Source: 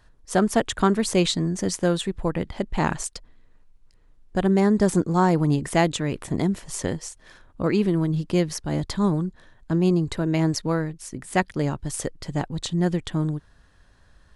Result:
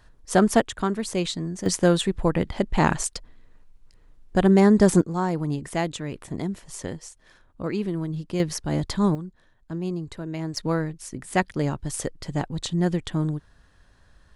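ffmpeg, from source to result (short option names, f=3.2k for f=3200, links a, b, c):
-af "asetnsamples=n=441:p=0,asendcmd='0.61 volume volume -5.5dB;1.66 volume volume 3dB;5.01 volume volume -6dB;8.4 volume volume 0.5dB;9.15 volume volume -9dB;10.57 volume volume -0.5dB',volume=2dB"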